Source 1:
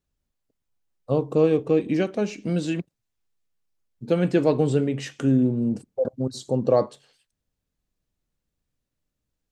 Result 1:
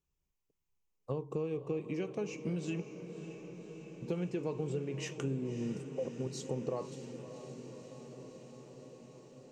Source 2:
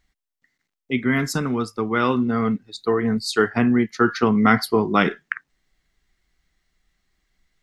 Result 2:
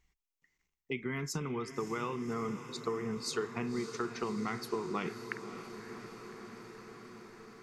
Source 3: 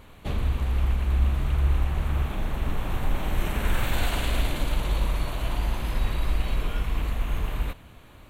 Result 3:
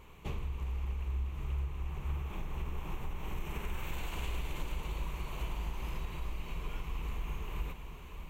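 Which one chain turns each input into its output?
ripple EQ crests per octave 0.75, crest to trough 8 dB; compressor 6:1, threshold -27 dBFS; diffused feedback echo 0.579 s, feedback 77%, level -11 dB; gain -6.5 dB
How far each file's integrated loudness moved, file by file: -16.0, -17.0, -12.0 LU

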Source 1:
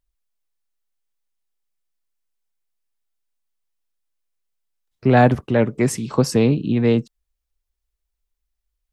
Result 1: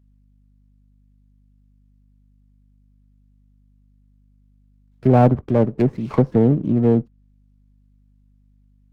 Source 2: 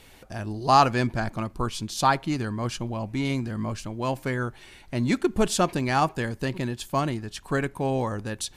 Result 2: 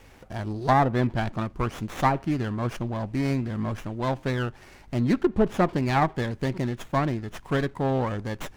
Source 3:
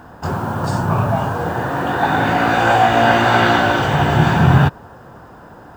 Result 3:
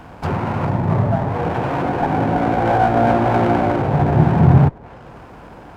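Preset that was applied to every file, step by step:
treble ducked by the level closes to 770 Hz, closed at -15 dBFS; hum 50 Hz, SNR 33 dB; running maximum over 9 samples; gain +1 dB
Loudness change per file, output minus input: +0.5, 0.0, -1.5 LU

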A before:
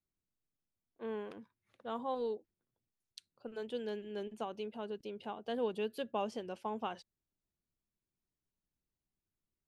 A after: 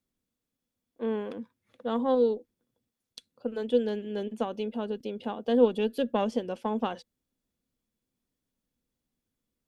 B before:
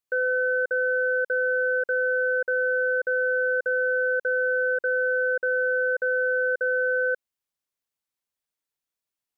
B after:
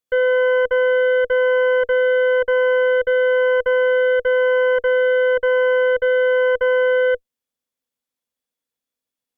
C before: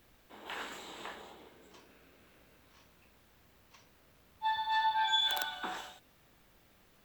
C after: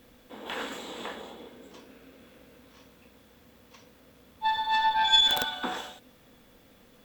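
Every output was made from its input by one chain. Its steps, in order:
added harmonics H 2 -9 dB, 5 -42 dB, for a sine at -17 dBFS; small resonant body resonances 250/490/3400 Hz, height 11 dB, ringing for 50 ms; normalise peaks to -9 dBFS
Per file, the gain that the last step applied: +5.0, +0.5, +5.0 dB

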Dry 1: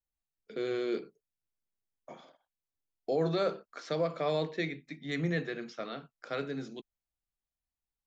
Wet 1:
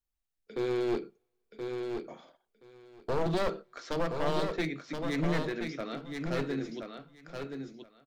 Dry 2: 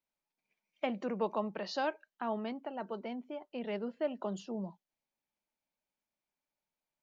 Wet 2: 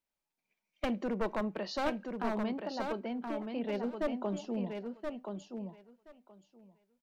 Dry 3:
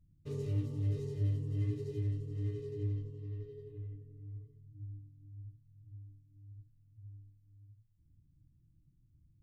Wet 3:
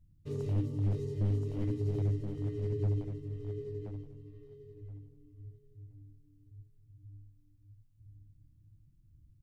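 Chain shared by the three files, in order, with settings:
one-sided fold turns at -30 dBFS; low shelf 77 Hz +6.5 dB; on a send: feedback echo 1.025 s, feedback 16%, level -5.5 dB; on the sum: two-slope reverb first 0.29 s, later 1.8 s, from -27 dB, DRR 19.5 dB; dynamic EQ 300 Hz, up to +4 dB, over -47 dBFS, Q 1.1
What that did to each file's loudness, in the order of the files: +0.5, +1.5, +3.5 LU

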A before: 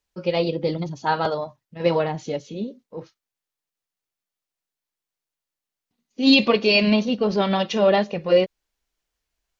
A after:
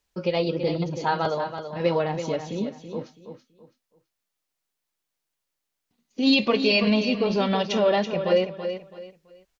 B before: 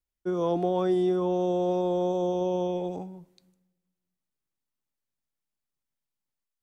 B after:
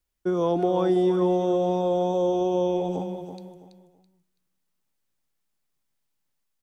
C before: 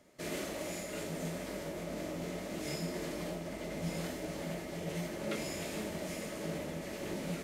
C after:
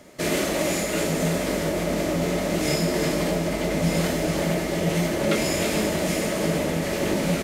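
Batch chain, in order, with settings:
compressor 1.5:1, threshold -35 dBFS; on a send: feedback echo 0.33 s, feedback 28%, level -9 dB; on the sum: match loudness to -24 LUFS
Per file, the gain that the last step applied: +4.0, +7.5, +15.5 dB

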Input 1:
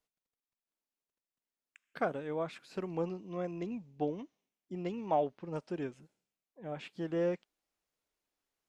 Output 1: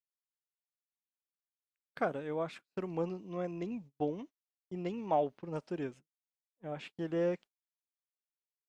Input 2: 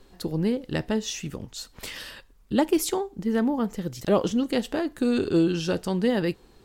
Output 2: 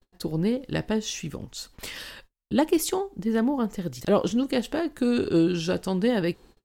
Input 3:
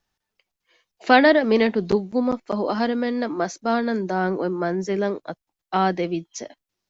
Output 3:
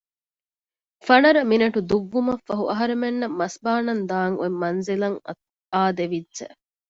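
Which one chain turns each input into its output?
gate -49 dBFS, range -36 dB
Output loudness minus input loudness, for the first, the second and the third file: 0.0, 0.0, 0.0 LU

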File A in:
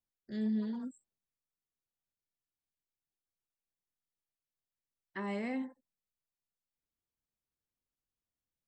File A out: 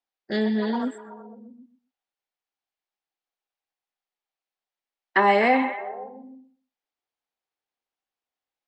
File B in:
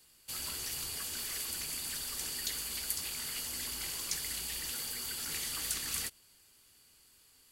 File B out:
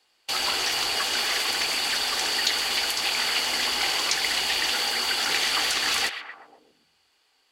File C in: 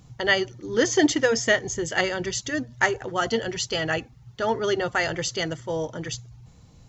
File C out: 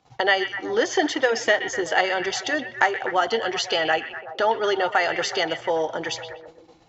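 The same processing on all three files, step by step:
bell 780 Hz +8 dB 0.33 oct; compressor 2:1, threshold -37 dBFS; three-band isolator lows -19 dB, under 320 Hz, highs -20 dB, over 5400 Hz; gate -59 dBFS, range -18 dB; on a send: delay with a stepping band-pass 0.125 s, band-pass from 2600 Hz, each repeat -0.7 oct, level -7 dB; on the sum: match loudness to -23 LUFS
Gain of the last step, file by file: +23.0, +20.0, +12.0 dB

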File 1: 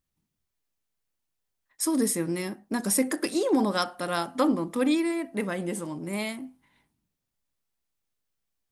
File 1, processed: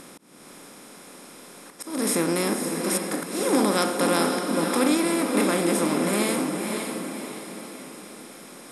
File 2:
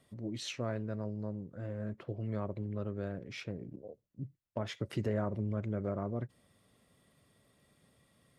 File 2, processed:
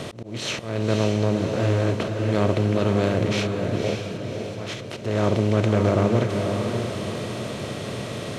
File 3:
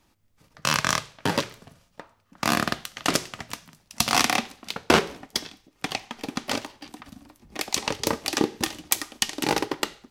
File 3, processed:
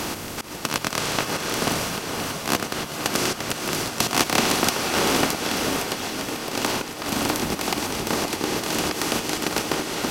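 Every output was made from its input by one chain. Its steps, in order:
per-bin compression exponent 0.4; auto swell 0.301 s; diffused feedback echo 0.545 s, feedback 46%, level -5 dB; match loudness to -24 LUFS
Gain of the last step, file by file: -1.5, +10.5, +5.0 dB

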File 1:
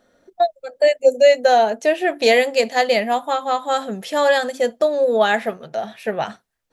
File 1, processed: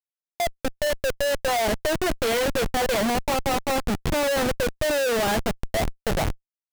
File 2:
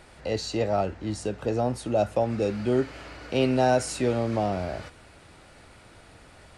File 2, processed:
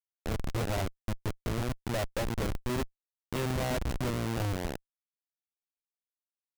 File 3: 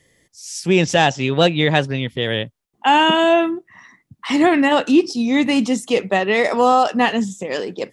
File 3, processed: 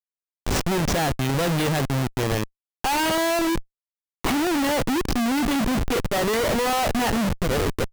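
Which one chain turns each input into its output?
in parallel at -3 dB: compressor 10:1, threshold -23 dBFS; on the sum: Schmitt trigger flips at -20.5 dBFS; gain -5.5 dB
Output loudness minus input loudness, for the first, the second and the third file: -6.5, -7.5, -6.0 LU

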